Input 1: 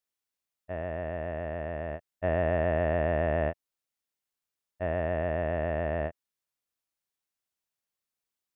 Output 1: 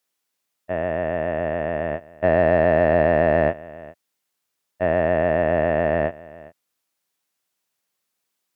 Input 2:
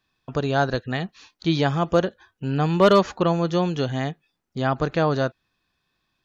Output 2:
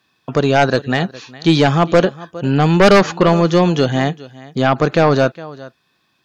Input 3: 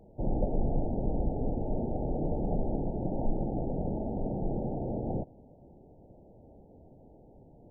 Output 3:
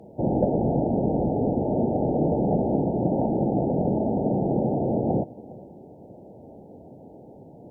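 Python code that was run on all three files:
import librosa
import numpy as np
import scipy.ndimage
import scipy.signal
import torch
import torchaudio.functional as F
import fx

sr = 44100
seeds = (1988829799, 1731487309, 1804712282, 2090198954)

p1 = scipy.signal.sosfilt(scipy.signal.butter(2, 130.0, 'highpass', fs=sr, output='sos'), x)
p2 = p1 + fx.echo_single(p1, sr, ms=410, db=-21.0, dry=0)
y = fx.fold_sine(p2, sr, drive_db=7, ceiling_db=-4.0)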